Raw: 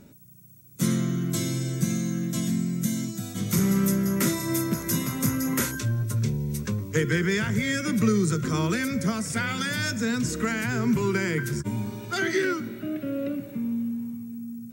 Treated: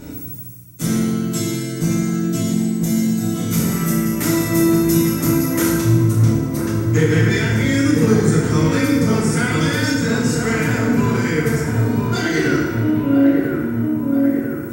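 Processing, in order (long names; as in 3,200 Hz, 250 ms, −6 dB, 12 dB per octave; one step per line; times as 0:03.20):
low-shelf EQ 71 Hz +8.5 dB
mains-hum notches 50/100/150/200 Hz
reversed playback
upward compression, threshold −26 dBFS
reversed playback
asymmetric clip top −19.5 dBFS
on a send: delay with a low-pass on its return 995 ms, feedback 56%, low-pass 1,200 Hz, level −3 dB
on the sum: feedback delay network reverb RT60 1.3 s, low-frequency decay 0.8×, high-frequency decay 0.8×, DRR −5.5 dB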